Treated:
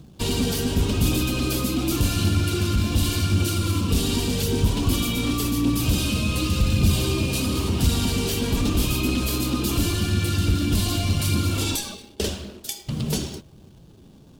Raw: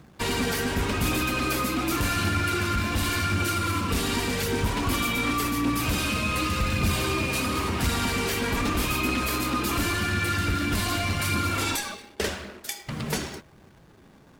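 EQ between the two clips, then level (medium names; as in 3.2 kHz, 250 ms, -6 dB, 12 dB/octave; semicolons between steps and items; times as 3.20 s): FFT filter 130 Hz 0 dB, 360 Hz -4 dB, 2 kHz -18 dB, 3 kHz -4 dB; +7.0 dB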